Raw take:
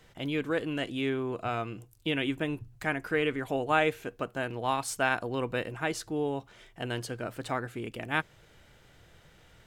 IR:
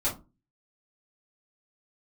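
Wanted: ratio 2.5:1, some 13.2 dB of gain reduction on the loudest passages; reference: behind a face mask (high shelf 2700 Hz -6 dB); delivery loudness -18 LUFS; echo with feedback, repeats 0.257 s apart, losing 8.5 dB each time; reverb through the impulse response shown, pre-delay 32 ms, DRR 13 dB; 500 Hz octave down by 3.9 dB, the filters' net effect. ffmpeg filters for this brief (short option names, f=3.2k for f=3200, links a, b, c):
-filter_complex "[0:a]equalizer=f=500:t=o:g=-4.5,acompressor=threshold=-43dB:ratio=2.5,aecho=1:1:257|514|771|1028:0.376|0.143|0.0543|0.0206,asplit=2[a][b];[1:a]atrim=start_sample=2205,adelay=32[c];[b][c]afir=irnorm=-1:irlink=0,volume=-20.5dB[d];[a][d]amix=inputs=2:normalize=0,highshelf=f=2.7k:g=-6,volume=25dB"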